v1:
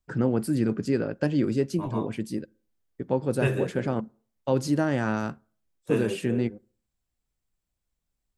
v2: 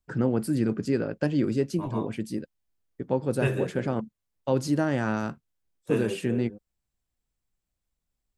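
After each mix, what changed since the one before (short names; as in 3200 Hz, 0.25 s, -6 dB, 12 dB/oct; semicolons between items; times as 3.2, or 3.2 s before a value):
reverb: off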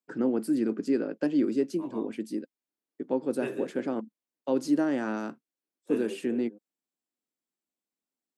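first voice +4.0 dB; master: add ladder high-pass 230 Hz, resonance 45%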